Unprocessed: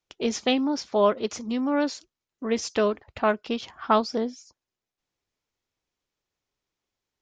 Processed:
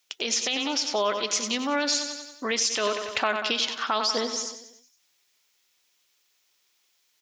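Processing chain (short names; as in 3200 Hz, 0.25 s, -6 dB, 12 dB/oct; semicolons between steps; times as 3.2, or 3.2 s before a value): bell 2800 Hz +7.5 dB 2.5 oct; feedback echo 93 ms, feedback 53%, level -12 dB; in parallel at +1 dB: compressor, threshold -28 dBFS, peak gain reduction 15 dB; on the sum: RIAA curve recording; limiter -11 dBFS, peak gain reduction 12 dB; vocal rider within 4 dB 0.5 s; gain -3 dB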